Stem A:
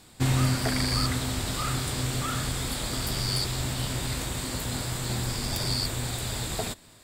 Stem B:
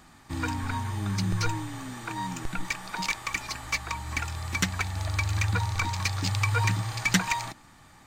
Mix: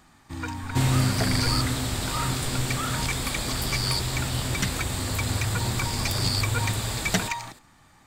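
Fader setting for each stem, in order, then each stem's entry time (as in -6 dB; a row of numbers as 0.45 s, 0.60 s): +1.5 dB, -2.5 dB; 0.55 s, 0.00 s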